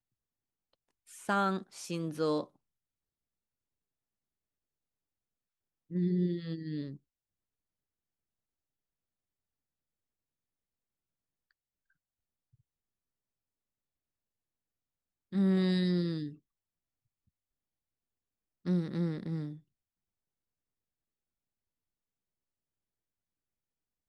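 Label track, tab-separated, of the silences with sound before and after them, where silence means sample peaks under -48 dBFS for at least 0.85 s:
2.450000	5.900000	silence
6.960000	15.320000	silence
16.350000	18.650000	silence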